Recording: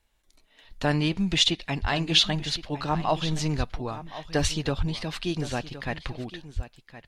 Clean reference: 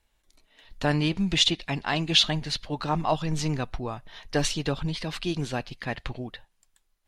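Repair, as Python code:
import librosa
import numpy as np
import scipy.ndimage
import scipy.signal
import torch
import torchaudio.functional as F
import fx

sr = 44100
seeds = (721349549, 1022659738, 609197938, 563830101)

y = fx.fix_deplosive(x, sr, at_s=(1.81, 3.57, 4.41, 4.77, 6.55))
y = fx.fix_echo_inverse(y, sr, delay_ms=1067, level_db=-14.5)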